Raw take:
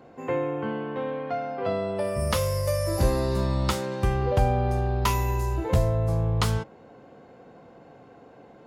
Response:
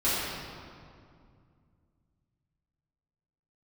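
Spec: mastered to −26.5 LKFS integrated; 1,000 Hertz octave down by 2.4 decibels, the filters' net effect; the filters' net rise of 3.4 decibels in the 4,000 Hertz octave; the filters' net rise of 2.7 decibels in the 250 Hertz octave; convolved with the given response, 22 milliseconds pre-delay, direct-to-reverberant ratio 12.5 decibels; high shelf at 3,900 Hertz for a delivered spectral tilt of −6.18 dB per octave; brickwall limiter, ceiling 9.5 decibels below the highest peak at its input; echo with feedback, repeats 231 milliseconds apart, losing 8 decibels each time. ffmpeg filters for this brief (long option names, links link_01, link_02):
-filter_complex "[0:a]equalizer=frequency=250:width_type=o:gain=4,equalizer=frequency=1000:width_type=o:gain=-3.5,highshelf=frequency=3900:gain=-3,equalizer=frequency=4000:width_type=o:gain=6.5,alimiter=limit=-18.5dB:level=0:latency=1,aecho=1:1:231|462|693|924|1155:0.398|0.159|0.0637|0.0255|0.0102,asplit=2[link_01][link_02];[1:a]atrim=start_sample=2205,adelay=22[link_03];[link_02][link_03]afir=irnorm=-1:irlink=0,volume=-25.5dB[link_04];[link_01][link_04]amix=inputs=2:normalize=0,volume=1.5dB"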